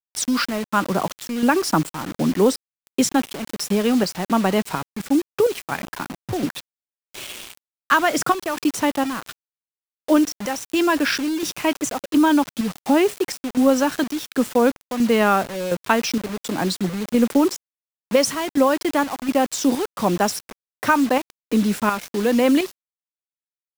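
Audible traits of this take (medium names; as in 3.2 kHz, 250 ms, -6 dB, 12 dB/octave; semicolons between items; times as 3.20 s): chopped level 1.4 Hz, depth 60%, duty 65%; a quantiser's noise floor 6-bit, dither none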